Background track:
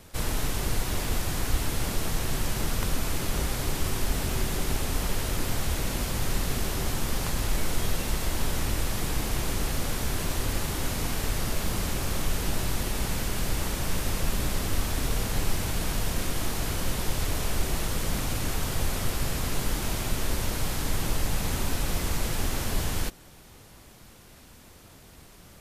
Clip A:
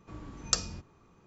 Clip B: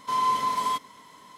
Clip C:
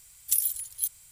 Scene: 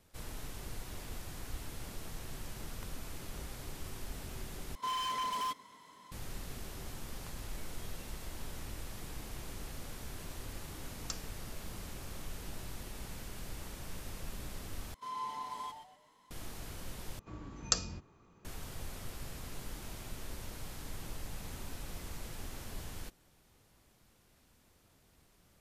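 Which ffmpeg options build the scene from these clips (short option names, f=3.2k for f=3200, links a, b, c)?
-filter_complex "[2:a]asplit=2[a][b];[1:a]asplit=2[c][d];[0:a]volume=-16dB[e];[a]aeval=exprs='0.0631*(abs(mod(val(0)/0.0631+3,4)-2)-1)':c=same[f];[b]asplit=5[g][h][i][j][k];[h]adelay=122,afreqshift=-140,volume=-8.5dB[l];[i]adelay=244,afreqshift=-280,volume=-18.1dB[m];[j]adelay=366,afreqshift=-420,volume=-27.8dB[n];[k]adelay=488,afreqshift=-560,volume=-37.4dB[o];[g][l][m][n][o]amix=inputs=5:normalize=0[p];[d]bandreject=f=5.6k:w=27[q];[e]asplit=4[r][s][t][u];[r]atrim=end=4.754[v];[f]atrim=end=1.37,asetpts=PTS-STARTPTS,volume=-7dB[w];[s]atrim=start=6.116:end=14.944[x];[p]atrim=end=1.37,asetpts=PTS-STARTPTS,volume=-16.5dB[y];[t]atrim=start=16.306:end=17.194[z];[q]atrim=end=1.26,asetpts=PTS-STARTPTS,volume=-2dB[aa];[u]atrim=start=18.446[ab];[c]atrim=end=1.26,asetpts=PTS-STARTPTS,volume=-14.5dB,afade=t=in:d=0.004:c=hsin,afade=t=out:st=1.256:d=0.004:c=hsin,adelay=10570[ac];[v][w]acrossfade=d=0.004:c1=hsin:c2=hsin[ad];[ad][x]acrossfade=d=0.004:c1=hsin:c2=hsin[ae];[ae][y]acrossfade=d=0.004:c1=hsin:c2=hsin[af];[af][z]acrossfade=d=0.004:c1=hsin:c2=hsin[ag];[ag][aa]acrossfade=d=0.004:c1=hsin:c2=hsin[ah];[ah][ab]acrossfade=d=0.004:c1=hsin:c2=hsin[ai];[ai][ac]amix=inputs=2:normalize=0"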